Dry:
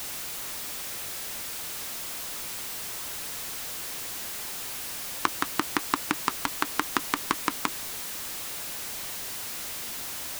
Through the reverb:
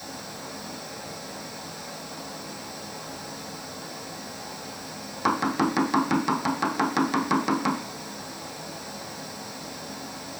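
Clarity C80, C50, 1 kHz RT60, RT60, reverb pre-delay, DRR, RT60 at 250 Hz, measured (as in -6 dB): 10.0 dB, 7.0 dB, 0.50 s, 0.50 s, 3 ms, -7.0 dB, 0.50 s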